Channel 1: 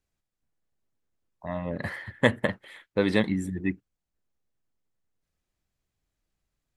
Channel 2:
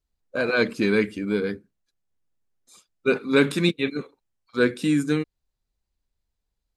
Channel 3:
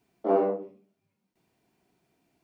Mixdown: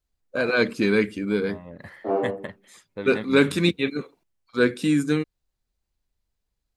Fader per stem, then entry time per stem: -9.5 dB, +0.5 dB, -1.0 dB; 0.00 s, 0.00 s, 1.80 s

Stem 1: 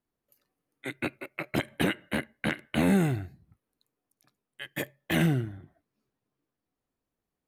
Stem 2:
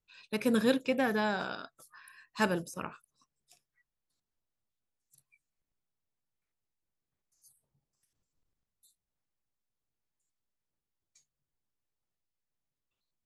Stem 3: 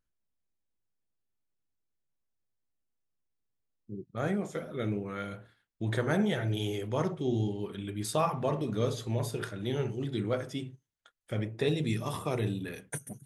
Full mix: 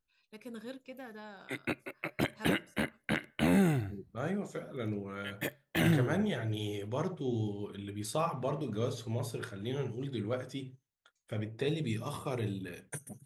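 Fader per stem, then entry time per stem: -3.0 dB, -17.5 dB, -4.0 dB; 0.65 s, 0.00 s, 0.00 s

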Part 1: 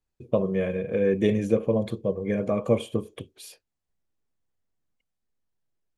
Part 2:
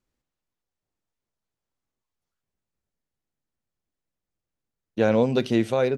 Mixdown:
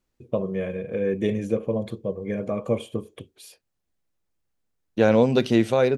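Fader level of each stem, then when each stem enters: -2.0 dB, +2.5 dB; 0.00 s, 0.00 s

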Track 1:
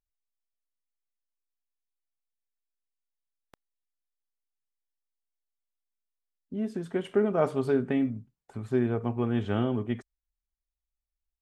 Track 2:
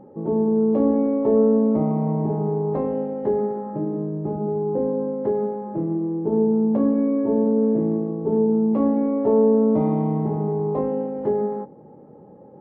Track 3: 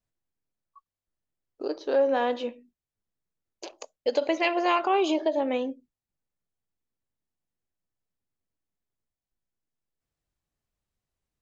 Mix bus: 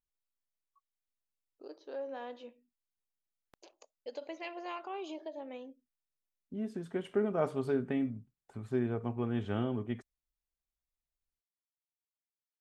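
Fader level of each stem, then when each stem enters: -6.0 dB, mute, -17.5 dB; 0.00 s, mute, 0.00 s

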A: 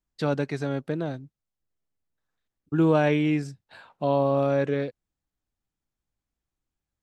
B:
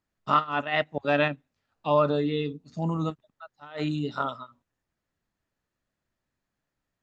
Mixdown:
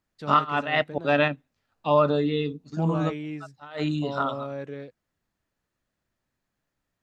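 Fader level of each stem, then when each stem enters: -11.0 dB, +2.0 dB; 0.00 s, 0.00 s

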